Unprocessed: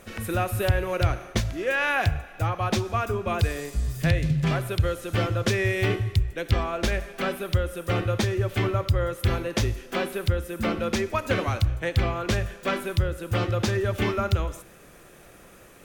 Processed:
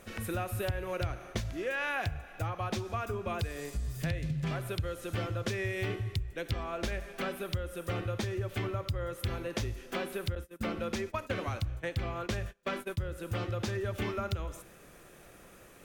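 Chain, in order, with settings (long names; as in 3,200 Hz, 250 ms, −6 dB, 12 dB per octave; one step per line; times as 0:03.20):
0:10.35–0:13.03: noise gate −30 dBFS, range −27 dB
downward compressor 2.5 to 1, threshold −28 dBFS, peak gain reduction 9 dB
level −4.5 dB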